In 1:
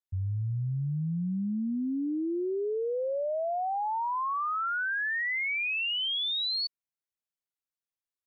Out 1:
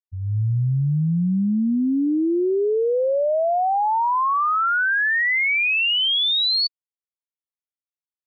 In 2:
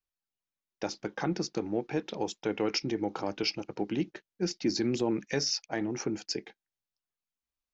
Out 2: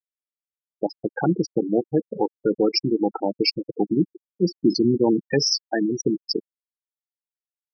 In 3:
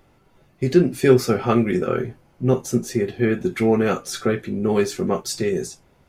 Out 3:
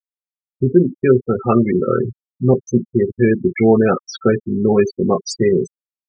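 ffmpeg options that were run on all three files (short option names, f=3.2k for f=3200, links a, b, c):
-af "dynaudnorm=f=190:g=3:m=10.5dB,afftfilt=real='re*gte(hypot(re,im),0.224)':imag='im*gte(hypot(re,im),0.224)':win_size=1024:overlap=0.75"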